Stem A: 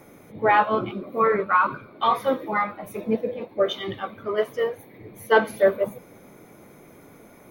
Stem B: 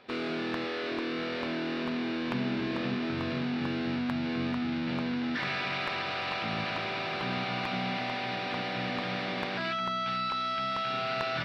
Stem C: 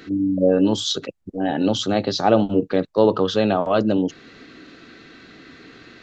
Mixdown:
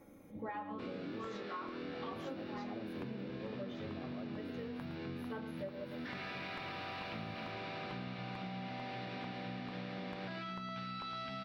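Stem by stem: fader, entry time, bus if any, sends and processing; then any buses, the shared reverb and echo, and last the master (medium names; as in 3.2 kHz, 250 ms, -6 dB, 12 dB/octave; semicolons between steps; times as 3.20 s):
-11.5 dB, 0.00 s, no send, echo send -10.5 dB, comb 3.7 ms, depth 52%
-0.5 dB, 0.70 s, no send, echo send -9.5 dB, none
-19.0 dB, 0.45 s, no send, no echo send, none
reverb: none
echo: delay 112 ms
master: bass shelf 490 Hz +8.5 dB; flange 0.37 Hz, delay 9.6 ms, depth 1.8 ms, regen -71%; compression 10:1, threshold -40 dBFS, peak gain reduction 19 dB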